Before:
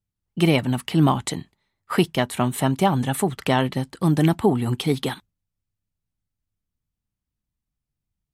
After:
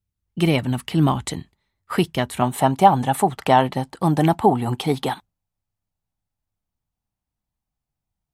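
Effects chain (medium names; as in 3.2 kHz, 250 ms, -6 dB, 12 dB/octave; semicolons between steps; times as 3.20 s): peaking EQ 64 Hz +11 dB 0.9 oct, from 2.42 s 790 Hz; trim -1 dB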